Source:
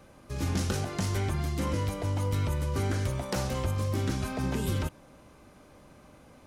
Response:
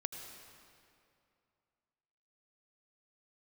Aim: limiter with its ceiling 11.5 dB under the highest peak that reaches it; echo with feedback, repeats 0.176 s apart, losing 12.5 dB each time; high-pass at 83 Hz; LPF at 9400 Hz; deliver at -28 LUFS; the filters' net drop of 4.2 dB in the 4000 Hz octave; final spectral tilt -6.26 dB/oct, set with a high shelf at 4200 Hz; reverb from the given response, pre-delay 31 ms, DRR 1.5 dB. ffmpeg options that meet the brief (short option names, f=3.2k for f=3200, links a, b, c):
-filter_complex "[0:a]highpass=83,lowpass=9.4k,equalizer=f=4k:t=o:g=-8.5,highshelf=f=4.2k:g=4.5,alimiter=level_in=3dB:limit=-24dB:level=0:latency=1,volume=-3dB,aecho=1:1:176|352|528:0.237|0.0569|0.0137,asplit=2[a][b];[1:a]atrim=start_sample=2205,adelay=31[c];[b][c]afir=irnorm=-1:irlink=0,volume=-1dB[d];[a][d]amix=inputs=2:normalize=0,volume=4.5dB"